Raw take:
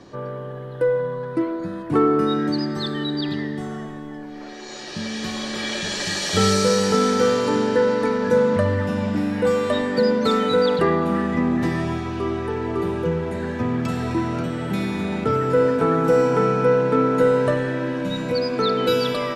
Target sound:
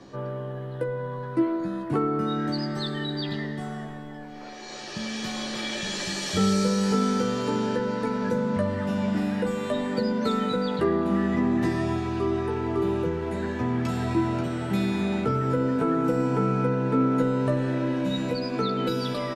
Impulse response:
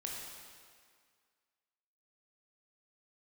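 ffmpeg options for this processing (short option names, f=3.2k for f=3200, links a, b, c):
-filter_complex "[0:a]acrossover=split=420[a][b];[b]acompressor=threshold=-27dB:ratio=3[c];[a][c]amix=inputs=2:normalize=0,asplit=2[d][e];[e]adelay=15,volume=-5dB[f];[d][f]amix=inputs=2:normalize=0,volume=-3.5dB"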